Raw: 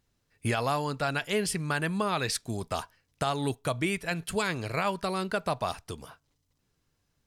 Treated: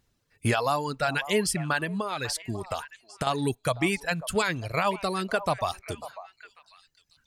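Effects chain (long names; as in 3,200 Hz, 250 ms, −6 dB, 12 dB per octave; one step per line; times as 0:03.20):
reverb reduction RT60 1.7 s
0:01.80–0:03.27: downward compressor, threshold −31 dBFS, peak gain reduction 6.5 dB
on a send: echo through a band-pass that steps 545 ms, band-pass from 790 Hz, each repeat 1.4 octaves, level −12 dB
on the sum: level +4 dB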